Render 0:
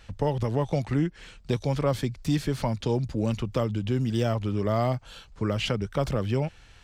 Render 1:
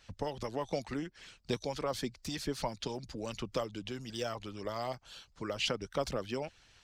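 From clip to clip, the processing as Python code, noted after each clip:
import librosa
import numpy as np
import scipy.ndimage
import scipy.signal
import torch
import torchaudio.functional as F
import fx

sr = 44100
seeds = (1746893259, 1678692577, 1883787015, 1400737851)

y = fx.peak_eq(x, sr, hz=5200.0, db=6.5, octaves=0.97)
y = fx.hpss(y, sr, part='harmonic', gain_db=-13)
y = fx.low_shelf(y, sr, hz=330.0, db=-4.5)
y = y * librosa.db_to_amplitude(-4.0)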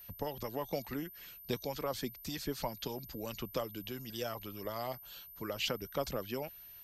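y = x + 10.0 ** (-48.0 / 20.0) * np.sin(2.0 * np.pi * 13000.0 * np.arange(len(x)) / sr)
y = y * librosa.db_to_amplitude(-2.0)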